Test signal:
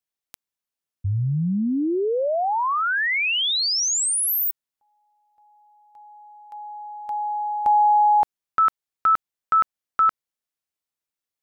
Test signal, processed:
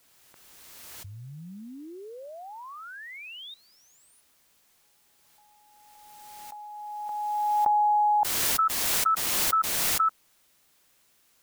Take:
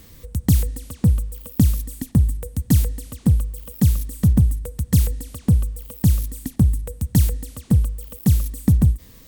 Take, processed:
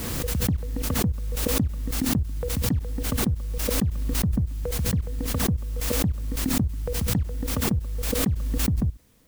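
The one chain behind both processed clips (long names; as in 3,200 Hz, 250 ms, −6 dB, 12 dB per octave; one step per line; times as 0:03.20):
low-pass filter 1,400 Hz 12 dB per octave
low-shelf EQ 77 Hz −8.5 dB
output level in coarse steps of 20 dB
background noise white −63 dBFS
background raised ahead of every attack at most 21 dB per second
level −2 dB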